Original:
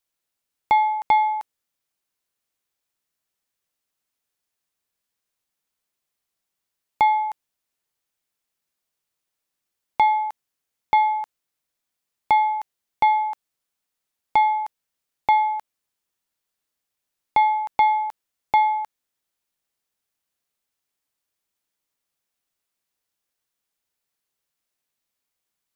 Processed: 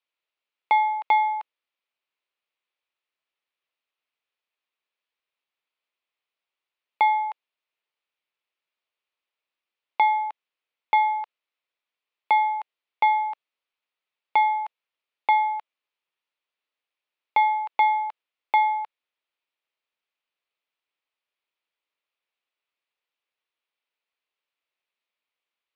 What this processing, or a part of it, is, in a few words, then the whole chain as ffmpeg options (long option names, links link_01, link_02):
phone earpiece: -af "highpass=480,equalizer=frequency=750:width_type=q:width=4:gain=-4,equalizer=frequency=1600:width_type=q:width=4:gain=-4,equalizer=frequency=2500:width_type=q:width=4:gain=4,lowpass=frequency=3800:width=0.5412,lowpass=frequency=3800:width=1.3066"